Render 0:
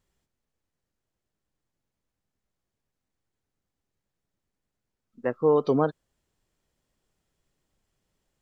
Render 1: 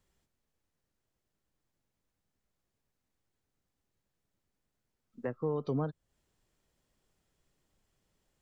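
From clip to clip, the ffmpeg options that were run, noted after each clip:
ffmpeg -i in.wav -filter_complex "[0:a]acrossover=split=170[link_01][link_02];[link_02]acompressor=threshold=-37dB:ratio=3[link_03];[link_01][link_03]amix=inputs=2:normalize=0" out.wav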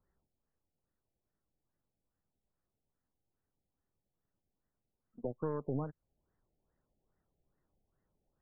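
ffmpeg -i in.wav -af "acompressor=threshold=-39dB:ratio=2,aeval=exprs='0.0473*(cos(1*acos(clip(val(0)/0.0473,-1,1)))-cos(1*PI/2))+0.00596*(cos(6*acos(clip(val(0)/0.0473,-1,1)))-cos(6*PI/2))+0.00299*(cos(7*acos(clip(val(0)/0.0473,-1,1)))-cos(7*PI/2))+0.00211*(cos(8*acos(clip(val(0)/0.0473,-1,1)))-cos(8*PI/2))':channel_layout=same,afftfilt=real='re*lt(b*sr/1024,820*pow(2100/820,0.5+0.5*sin(2*PI*2.4*pts/sr)))':imag='im*lt(b*sr/1024,820*pow(2100/820,0.5+0.5*sin(2*PI*2.4*pts/sr)))':win_size=1024:overlap=0.75,volume=2dB" out.wav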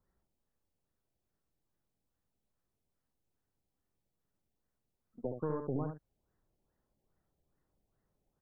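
ffmpeg -i in.wav -af "aecho=1:1:71:0.473" out.wav

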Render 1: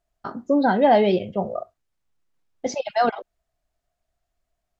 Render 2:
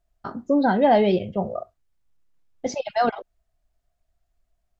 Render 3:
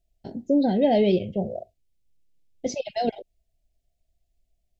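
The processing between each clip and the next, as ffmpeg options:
ffmpeg -i in.wav -af "lowshelf=frequency=110:gain=10,volume=-1.5dB" out.wav
ffmpeg -i in.wav -af "asuperstop=centerf=1200:order=4:qfactor=0.7" out.wav

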